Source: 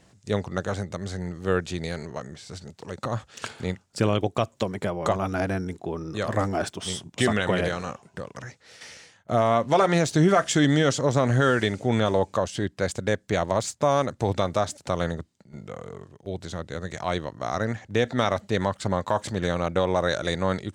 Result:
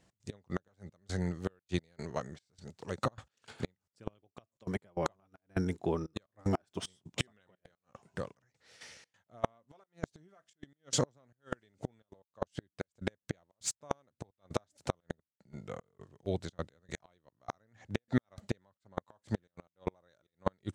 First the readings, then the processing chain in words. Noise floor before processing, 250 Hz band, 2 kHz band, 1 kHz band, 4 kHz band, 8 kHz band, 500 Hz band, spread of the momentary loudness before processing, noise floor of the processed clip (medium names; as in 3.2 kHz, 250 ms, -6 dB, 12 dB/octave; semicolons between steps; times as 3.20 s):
-61 dBFS, -12.5 dB, -17.0 dB, -16.5 dB, -13.0 dB, -8.5 dB, -16.0 dB, 18 LU, under -85 dBFS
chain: trance gate "x.x..xxxx..xxxx" 151 bpm -24 dB; inverted gate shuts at -17 dBFS, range -32 dB; upward expansion 1.5:1, over -50 dBFS; trim +1.5 dB